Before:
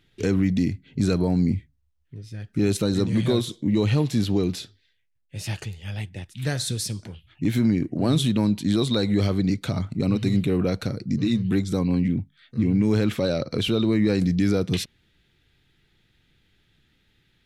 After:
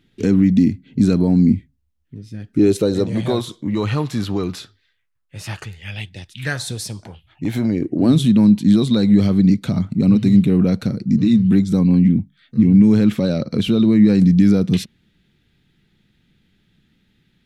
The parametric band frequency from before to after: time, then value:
parametric band +11.5 dB 1 octave
0:02.36 230 Hz
0:03.64 1,200 Hz
0:05.62 1,200 Hz
0:06.24 5,200 Hz
0:06.65 800 Hz
0:07.55 800 Hz
0:08.19 200 Hz

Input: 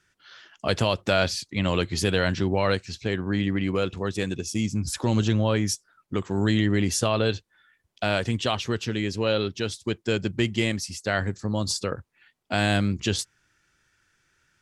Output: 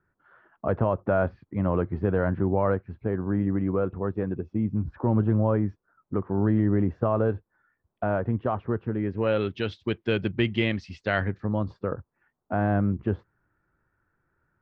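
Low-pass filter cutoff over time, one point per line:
low-pass filter 24 dB per octave
0:08.95 1,300 Hz
0:09.54 3,200 Hz
0:11.15 3,200 Hz
0:11.94 1,300 Hz

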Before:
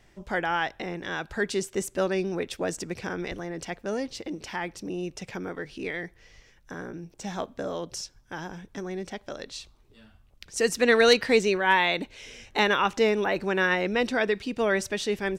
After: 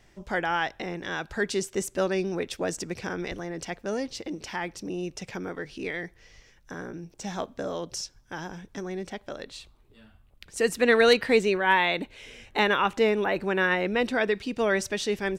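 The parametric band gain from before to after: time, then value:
parametric band 5,700 Hz 0.72 octaves
0:08.77 +2 dB
0:09.53 −7.5 dB
0:13.94 −7.5 dB
0:14.58 +1.5 dB

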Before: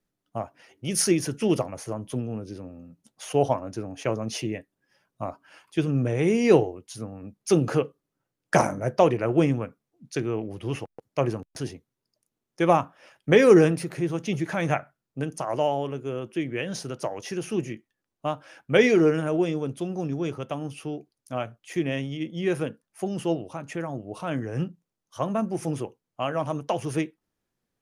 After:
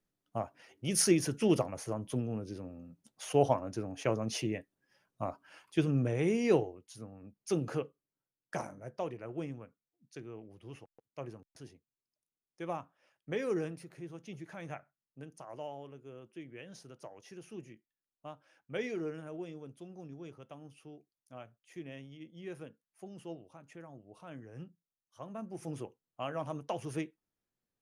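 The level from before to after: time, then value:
0:05.80 −4.5 dB
0:06.82 −11.5 dB
0:07.83 −11.5 dB
0:08.64 −18.5 dB
0:25.24 −18.5 dB
0:25.83 −10 dB

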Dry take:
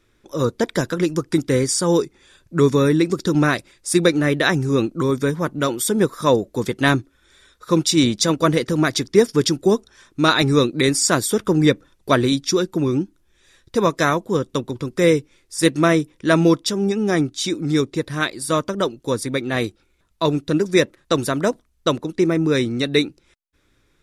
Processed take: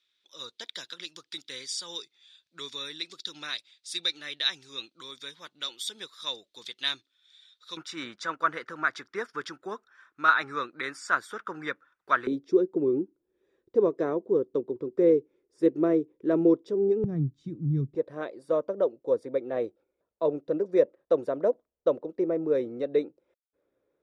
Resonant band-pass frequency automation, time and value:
resonant band-pass, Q 3.6
3,700 Hz
from 0:07.77 1,400 Hz
from 0:12.27 410 Hz
from 0:17.04 140 Hz
from 0:17.95 530 Hz

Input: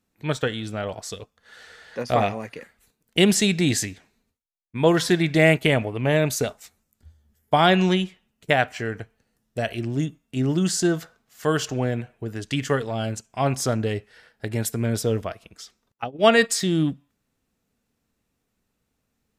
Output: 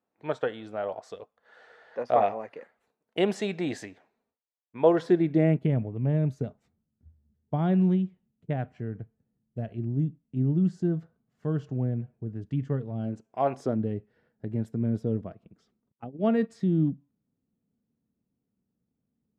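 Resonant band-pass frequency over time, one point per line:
resonant band-pass, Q 1.2
0:04.79 680 Hz
0:05.72 150 Hz
0:12.95 150 Hz
0:13.50 700 Hz
0:13.82 190 Hz

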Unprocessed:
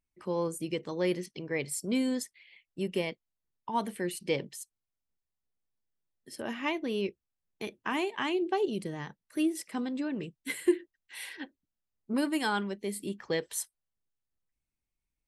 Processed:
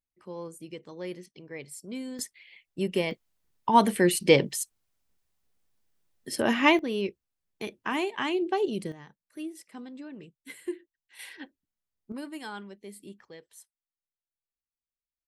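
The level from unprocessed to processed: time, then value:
−8 dB
from 0:02.19 +4 dB
from 0:03.11 +11.5 dB
from 0:06.79 +2 dB
from 0:08.92 −9 dB
from 0:11.19 −2 dB
from 0:12.12 −9.5 dB
from 0:13.25 −17 dB

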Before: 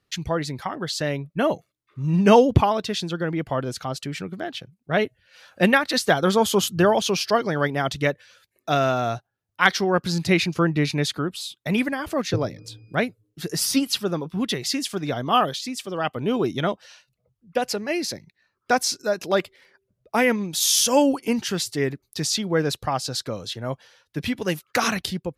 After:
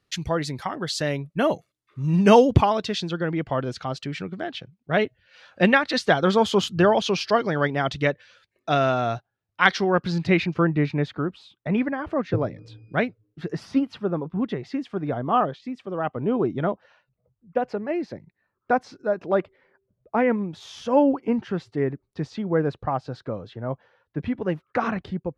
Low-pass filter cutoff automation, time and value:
0:02.39 11,000 Hz
0:03.20 4,300 Hz
0:09.72 4,300 Hz
0:11.01 1,600 Hz
0:12.27 1,600 Hz
0:13.05 3,000 Hz
0:13.79 1,300 Hz

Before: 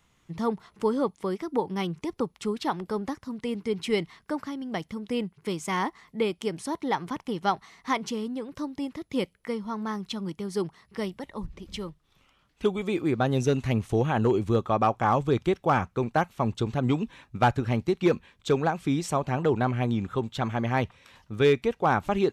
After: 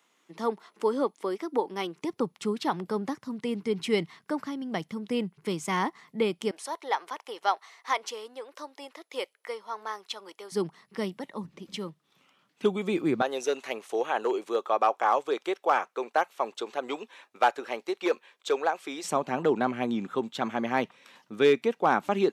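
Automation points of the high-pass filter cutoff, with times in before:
high-pass filter 24 dB per octave
270 Hz
from 0:02.02 130 Hz
from 0:06.51 480 Hz
from 0:10.52 160 Hz
from 0:13.22 410 Hz
from 0:19.04 200 Hz

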